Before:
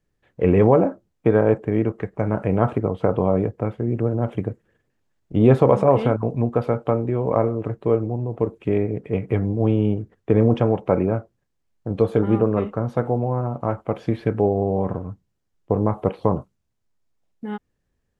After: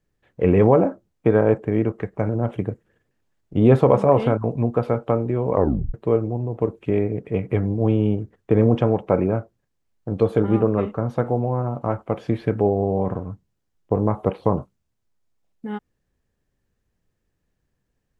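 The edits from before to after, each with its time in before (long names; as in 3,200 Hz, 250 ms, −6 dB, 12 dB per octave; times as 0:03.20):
0:02.29–0:04.08: remove
0:07.33: tape stop 0.40 s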